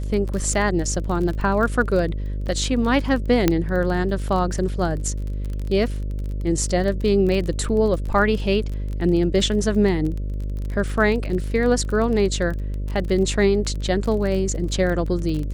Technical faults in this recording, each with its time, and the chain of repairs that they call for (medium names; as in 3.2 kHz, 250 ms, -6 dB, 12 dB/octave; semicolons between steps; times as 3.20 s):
buzz 50 Hz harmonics 12 -26 dBFS
crackle 27 per s -27 dBFS
3.48 s: pop -3 dBFS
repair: de-click; de-hum 50 Hz, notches 12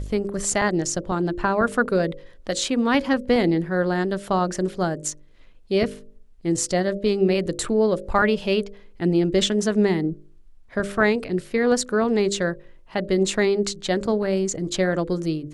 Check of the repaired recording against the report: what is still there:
nothing left